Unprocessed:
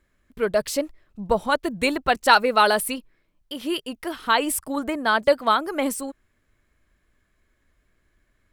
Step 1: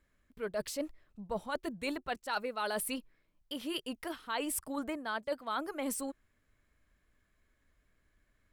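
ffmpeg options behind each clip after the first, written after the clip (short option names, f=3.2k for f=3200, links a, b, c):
-af "bandreject=f=360:w=12,areverse,acompressor=threshold=-27dB:ratio=6,areverse,volume=-6dB"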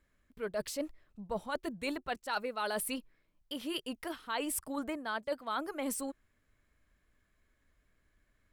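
-af anull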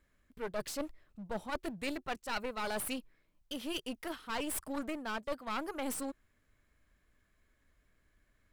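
-af "aeval=exprs='clip(val(0),-1,0.00708)':c=same,volume=1dB"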